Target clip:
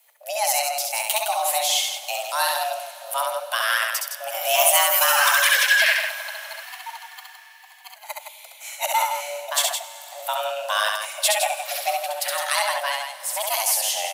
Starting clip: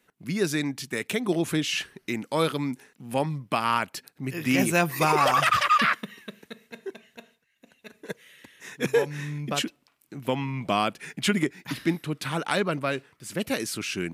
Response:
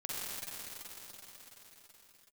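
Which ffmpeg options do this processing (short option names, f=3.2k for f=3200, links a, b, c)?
-filter_complex "[0:a]aemphasis=mode=production:type=75fm,afreqshift=430,aecho=1:1:67.06|163.3:0.708|0.447,asplit=2[a][b];[1:a]atrim=start_sample=2205[c];[b][c]afir=irnorm=-1:irlink=0,volume=-16dB[d];[a][d]amix=inputs=2:normalize=0,asettb=1/sr,asplit=3[e][f][g];[e]atrim=end=6.634[h];[f]atrim=start=6.63:end=7.96,asetpts=PTS-STARTPTS,afade=t=in:d=0.004:c=qsin,afade=t=out:st=1.326:d=0.004:c=qsin,afreqshift=100[i];[g]atrim=start=7.956[j];[h][i]acrossfade=d=0.004:c1=hsin:c2=qsin[k];[k][j]acrossfade=d=0.004:c1=qsin:c2=hsin,volume=-1dB"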